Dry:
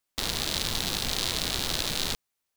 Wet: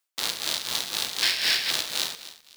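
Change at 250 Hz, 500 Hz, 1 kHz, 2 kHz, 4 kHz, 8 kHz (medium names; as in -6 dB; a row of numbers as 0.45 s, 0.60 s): -9.0 dB, -4.0 dB, -0.5 dB, +6.0 dB, +3.5 dB, +1.5 dB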